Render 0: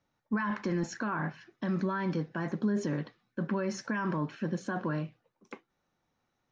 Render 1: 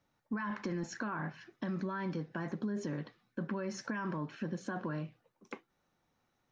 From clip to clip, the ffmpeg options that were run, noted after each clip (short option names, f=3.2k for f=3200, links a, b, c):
-af "acompressor=threshold=-38dB:ratio=2.5,volume=1dB"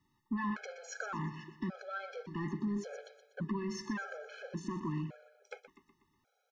-af "asoftclip=type=tanh:threshold=-30.5dB,aecho=1:1:122|244|366|488|610:0.251|0.123|0.0603|0.0296|0.0145,afftfilt=real='re*gt(sin(2*PI*0.88*pts/sr)*(1-2*mod(floor(b*sr/1024/430),2)),0)':imag='im*gt(sin(2*PI*0.88*pts/sr)*(1-2*mod(floor(b*sr/1024/430),2)),0)':win_size=1024:overlap=0.75,volume=3.5dB"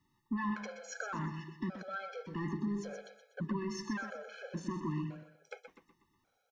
-af "aecho=1:1:128|256|384:0.266|0.0559|0.0117"